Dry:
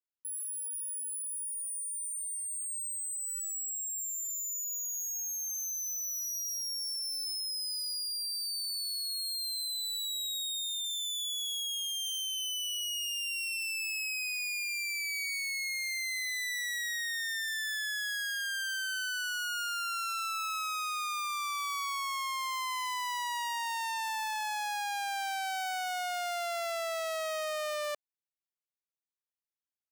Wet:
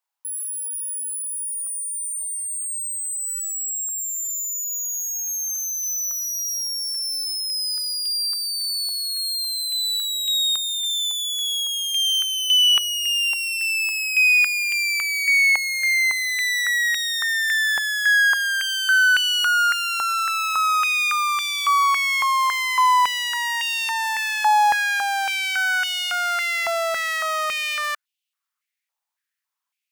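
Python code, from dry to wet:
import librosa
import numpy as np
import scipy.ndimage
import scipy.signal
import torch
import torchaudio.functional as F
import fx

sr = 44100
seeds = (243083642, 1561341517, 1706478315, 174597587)

y = fx.filter_held_highpass(x, sr, hz=3.6, low_hz=860.0, high_hz=2900.0)
y = F.gain(torch.from_numpy(y), 9.0).numpy()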